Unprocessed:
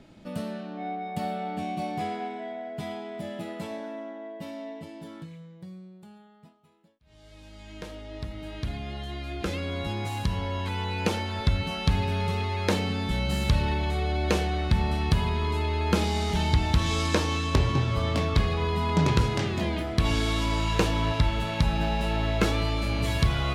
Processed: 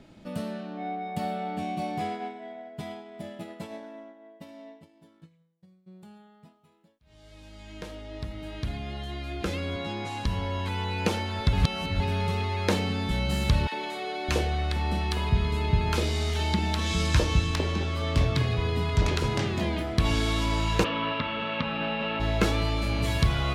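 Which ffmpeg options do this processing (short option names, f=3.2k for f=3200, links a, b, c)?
-filter_complex "[0:a]asplit=3[a][b][c];[a]afade=t=out:st=2.05:d=0.02[d];[b]agate=range=-33dB:threshold=-32dB:ratio=3:release=100:detection=peak,afade=t=in:st=2.05:d=0.02,afade=t=out:st=5.86:d=0.02[e];[c]afade=t=in:st=5.86:d=0.02[f];[d][e][f]amix=inputs=3:normalize=0,asettb=1/sr,asplit=3[g][h][i];[g]atrim=end=9.764[j];[h]atrim=start=9.76:end=10.26,asetpts=PTS-STARTPTS,afade=t=in:d=0.004:c=qsin,afade=t=out:st=0.496:d=0.004:c=qsin,highpass=150,lowpass=7.3k[k];[i]atrim=start=10.256[l];[j][k]acrossfade=d=0.004:c1=hsin:c2=qsin[m];[m][l]acrossfade=d=0.004:c1=qsin:c2=hsin,asettb=1/sr,asplit=3[n][o][p];[n]atrim=end=13.674[q];[o]atrim=start=13.67:end=19.24,asetpts=PTS-STARTPTS,afade=t=in:d=0.004:c=qsin,afade=t=out:st=5.566:d=0.004:c=qsin,acrossover=split=270|870[r][s][t];[s]adelay=50[u];[r]adelay=610[v];[v][u][t]amix=inputs=3:normalize=0,atrim=end_sample=245637[w];[p]atrim=start=19.236[x];[q][w]acrossfade=d=0.004:c1=hsin:c2=qsin[y];[y][x]acrossfade=d=0.004:c1=qsin:c2=hsin,asplit=3[z][aa][ab];[z]afade=t=out:st=20.83:d=0.02[ac];[aa]highpass=240,equalizer=f=240:t=q:w=4:g=7,equalizer=f=350:t=q:w=4:g=-8,equalizer=f=530:t=q:w=4:g=6,equalizer=f=750:t=q:w=4:g=-9,equalizer=f=1.2k:t=q:w=4:g=8,equalizer=f=2.8k:t=q:w=4:g=6,lowpass=f=3.5k:w=0.5412,lowpass=f=3.5k:w=1.3066,afade=t=in:st=20.83:d=0.02,afade=t=out:st=22.19:d=0.02[ad];[ab]afade=t=in:st=22.19:d=0.02[ae];[ac][ad][ae]amix=inputs=3:normalize=0,asplit=3[af][ag][ah];[af]atrim=end=11.532[ai];[ag]atrim=start=11.528:end=12.002,asetpts=PTS-STARTPTS,areverse[aj];[ah]atrim=start=11.998[ak];[ai][aj]acrossfade=d=0.004:c1=hsin:c2=hsin[al];[al][ak]acrossfade=d=0.004:c1=hsin:c2=hsin"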